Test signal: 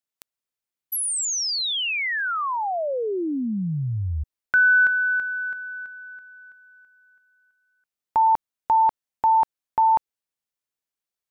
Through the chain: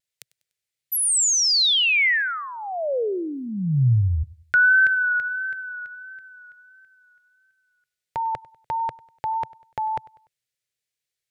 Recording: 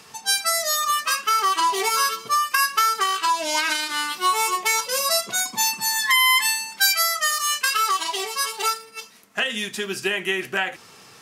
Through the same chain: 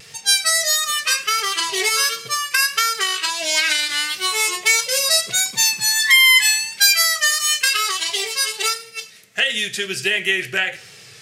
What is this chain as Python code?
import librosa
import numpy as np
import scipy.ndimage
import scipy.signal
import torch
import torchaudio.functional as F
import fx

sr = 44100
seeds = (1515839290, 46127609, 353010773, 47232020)

p1 = fx.graphic_eq(x, sr, hz=(125, 250, 500, 1000, 2000, 4000, 8000), db=(11, -9, 6, -12, 8, 5, 5))
p2 = fx.vibrato(p1, sr, rate_hz=1.5, depth_cents=40.0)
y = p2 + fx.echo_feedback(p2, sr, ms=98, feedback_pct=43, wet_db=-22.0, dry=0)